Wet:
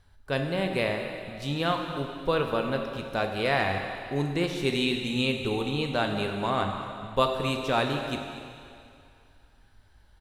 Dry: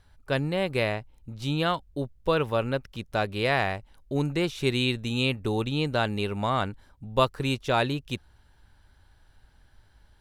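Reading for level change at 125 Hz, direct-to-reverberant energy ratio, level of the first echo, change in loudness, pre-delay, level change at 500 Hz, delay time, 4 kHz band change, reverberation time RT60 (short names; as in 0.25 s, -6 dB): -3.0 dB, 2.5 dB, -15.0 dB, -0.5 dB, 3 ms, 0.0 dB, 0.234 s, 0.0 dB, 2.4 s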